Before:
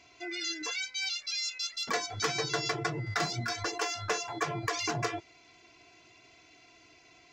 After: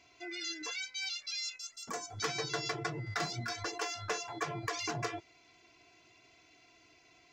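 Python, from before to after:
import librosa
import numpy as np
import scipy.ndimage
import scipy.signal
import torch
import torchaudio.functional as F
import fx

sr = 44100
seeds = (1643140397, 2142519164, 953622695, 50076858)

y = fx.graphic_eq_10(x, sr, hz=(500, 2000, 4000, 8000), db=(-4, -8, -12, 7), at=(1.56, 2.19))
y = y * 10.0 ** (-4.5 / 20.0)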